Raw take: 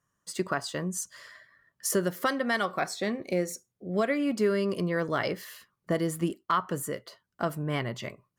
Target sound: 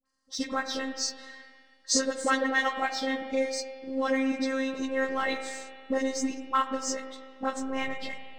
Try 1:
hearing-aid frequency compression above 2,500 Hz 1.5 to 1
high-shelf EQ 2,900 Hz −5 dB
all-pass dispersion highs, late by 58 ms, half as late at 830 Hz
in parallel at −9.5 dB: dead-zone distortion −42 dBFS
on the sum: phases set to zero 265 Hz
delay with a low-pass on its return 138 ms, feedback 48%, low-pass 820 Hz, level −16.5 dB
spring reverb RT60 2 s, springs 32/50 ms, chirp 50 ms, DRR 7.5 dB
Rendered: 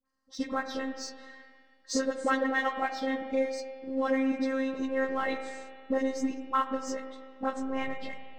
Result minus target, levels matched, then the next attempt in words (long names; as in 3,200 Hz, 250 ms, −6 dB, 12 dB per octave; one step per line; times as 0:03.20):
8,000 Hz band −8.5 dB
hearing-aid frequency compression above 2,500 Hz 1.5 to 1
high-shelf EQ 2,900 Hz +7 dB
all-pass dispersion highs, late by 58 ms, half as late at 830 Hz
in parallel at −9.5 dB: dead-zone distortion −42 dBFS
on the sum: phases set to zero 265 Hz
delay with a low-pass on its return 138 ms, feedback 48%, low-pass 820 Hz, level −16.5 dB
spring reverb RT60 2 s, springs 32/50 ms, chirp 50 ms, DRR 7.5 dB